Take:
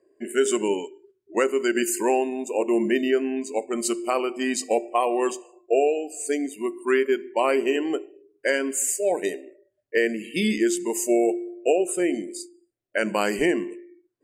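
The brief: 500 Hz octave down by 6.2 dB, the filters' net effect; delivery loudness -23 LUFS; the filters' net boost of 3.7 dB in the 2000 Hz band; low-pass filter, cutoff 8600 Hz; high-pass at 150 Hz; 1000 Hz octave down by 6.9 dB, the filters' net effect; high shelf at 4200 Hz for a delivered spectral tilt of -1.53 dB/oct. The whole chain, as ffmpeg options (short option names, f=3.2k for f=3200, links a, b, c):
-af "highpass=150,lowpass=8.6k,equalizer=f=500:t=o:g=-7,equalizer=f=1k:t=o:g=-8.5,equalizer=f=2k:t=o:g=5.5,highshelf=f=4.2k:g=7.5,volume=3dB"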